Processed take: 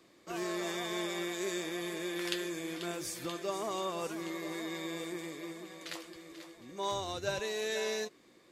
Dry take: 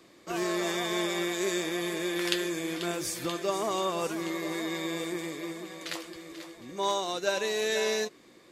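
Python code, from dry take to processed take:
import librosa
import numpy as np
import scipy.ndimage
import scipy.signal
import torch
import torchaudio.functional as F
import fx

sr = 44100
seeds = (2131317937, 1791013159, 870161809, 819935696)

p1 = fx.octave_divider(x, sr, octaves=2, level_db=0.0, at=(6.91, 7.4))
p2 = 10.0 ** (-22.5 / 20.0) * np.tanh(p1 / 10.0 ** (-22.5 / 20.0))
p3 = p1 + F.gain(torch.from_numpy(p2), -11.5).numpy()
y = F.gain(torch.from_numpy(p3), -8.0).numpy()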